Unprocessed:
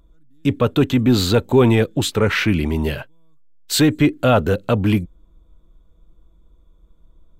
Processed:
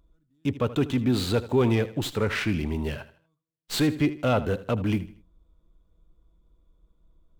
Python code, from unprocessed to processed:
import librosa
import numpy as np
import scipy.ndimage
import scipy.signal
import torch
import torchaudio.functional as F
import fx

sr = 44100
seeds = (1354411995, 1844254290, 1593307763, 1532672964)

y = fx.echo_feedback(x, sr, ms=79, feedback_pct=37, wet_db=-16)
y = fx.running_max(y, sr, window=3)
y = y * 10.0 ** (-8.5 / 20.0)